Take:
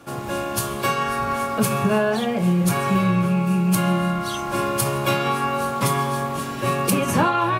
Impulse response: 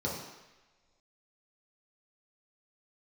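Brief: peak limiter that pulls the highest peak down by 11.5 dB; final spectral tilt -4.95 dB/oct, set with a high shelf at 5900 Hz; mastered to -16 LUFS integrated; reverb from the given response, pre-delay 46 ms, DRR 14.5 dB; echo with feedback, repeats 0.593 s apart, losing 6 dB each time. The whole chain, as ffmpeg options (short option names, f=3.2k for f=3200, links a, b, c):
-filter_complex "[0:a]highshelf=f=5.9k:g=3.5,alimiter=limit=-15.5dB:level=0:latency=1,aecho=1:1:593|1186|1779|2372|2965|3558:0.501|0.251|0.125|0.0626|0.0313|0.0157,asplit=2[a][b];[1:a]atrim=start_sample=2205,adelay=46[c];[b][c]afir=irnorm=-1:irlink=0,volume=-20.5dB[d];[a][d]amix=inputs=2:normalize=0,volume=7dB"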